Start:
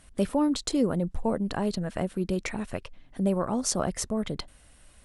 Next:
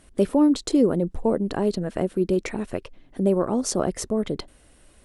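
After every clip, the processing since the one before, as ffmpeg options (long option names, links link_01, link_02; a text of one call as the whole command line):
ffmpeg -i in.wav -af "equalizer=frequency=370:width_type=o:width=1.2:gain=9.5" out.wav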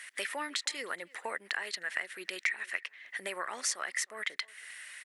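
ffmpeg -i in.wav -filter_complex "[0:a]highpass=frequency=1900:width_type=q:width=6.5,acompressor=threshold=-44dB:ratio=2.5,asplit=2[link_01][link_02];[link_02]adelay=310,highpass=300,lowpass=3400,asoftclip=type=hard:threshold=-30.5dB,volume=-22dB[link_03];[link_01][link_03]amix=inputs=2:normalize=0,volume=8dB" out.wav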